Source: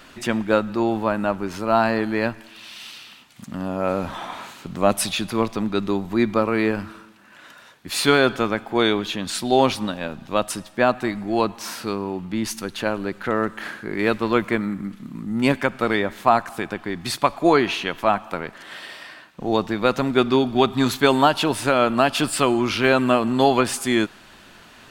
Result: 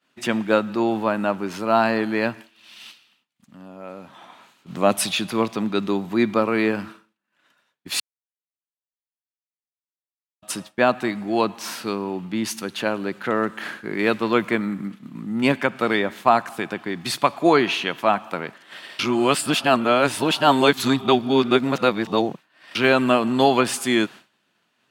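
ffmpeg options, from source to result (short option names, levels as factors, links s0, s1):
-filter_complex "[0:a]asplit=3[s0][s1][s2];[s0]afade=t=out:st=2.91:d=0.02[s3];[s1]acompressor=threshold=0.00891:ratio=2:attack=3.2:release=140:knee=1:detection=peak,afade=t=in:st=2.91:d=0.02,afade=t=out:st=4.66:d=0.02[s4];[s2]afade=t=in:st=4.66:d=0.02[s5];[s3][s4][s5]amix=inputs=3:normalize=0,asettb=1/sr,asplit=3[s6][s7][s8];[s6]atrim=end=14.884[s9];[s7]atrim=start=14.88:end=15.76,asetpts=PTS-STARTPTS,afade=t=in:d=0.004:c=qsin,afade=t=out:st=0.876:d=0.004:c=qsin,bass=f=250:g=-1,treble=f=4000:g=-3[s10];[s8]atrim=start=15.756[s11];[s9][s10]acrossfade=d=0.004:c1=hsin:c2=qsin[s12];[s12][s11]acrossfade=d=0.004:c1=qsin:c2=hsin,asplit=5[s13][s14][s15][s16][s17];[s13]atrim=end=8,asetpts=PTS-STARTPTS,afade=t=out:st=7.996:d=0.004:c=hsin[s18];[s14]atrim=start=8:end=10.42,asetpts=PTS-STARTPTS,volume=0[s19];[s15]atrim=start=10.42:end=18.992,asetpts=PTS-STARTPTS,afade=t=in:d=0.004:c=hsin[s20];[s16]atrim=start=18.988:end=22.752,asetpts=PTS-STARTPTS,areverse[s21];[s17]atrim=start=22.748[s22];[s18][s19][s20]concat=n=3:v=0:a=1[s23];[s23][s21]acrossfade=d=0.004:c1=hsin:c2=hsin[s24];[s24][s22]acrossfade=d=0.004:c1=hsin:c2=hsin,highpass=f=120:w=0.5412,highpass=f=120:w=1.3066,agate=range=0.0224:threshold=0.0224:ratio=3:detection=peak,equalizer=f=2900:t=o:w=0.77:g=2.5"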